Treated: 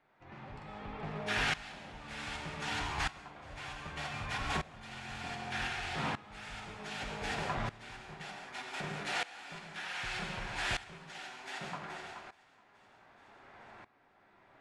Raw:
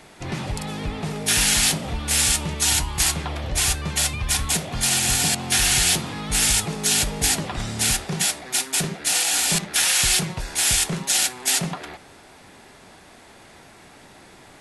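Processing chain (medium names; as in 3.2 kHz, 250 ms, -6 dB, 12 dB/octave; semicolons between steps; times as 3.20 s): low-pass 1.3 kHz 12 dB/octave; tilt shelf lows -8 dB, about 790 Hz; 5.67–6.11 s: compressor with a negative ratio -34 dBFS, ratio -1; flange 2 Hz, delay 7 ms, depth 2.9 ms, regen -42%; on a send: two-band feedback delay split 620 Hz, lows 110 ms, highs 426 ms, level -12 dB; on the sum: gated-style reverb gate 220 ms flat, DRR 3 dB; sawtooth tremolo in dB swelling 0.65 Hz, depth 18 dB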